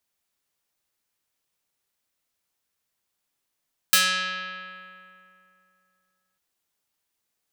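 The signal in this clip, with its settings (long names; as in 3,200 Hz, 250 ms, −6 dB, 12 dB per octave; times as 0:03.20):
Karplus-Strong string F#3, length 2.45 s, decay 2.83 s, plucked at 0.49, medium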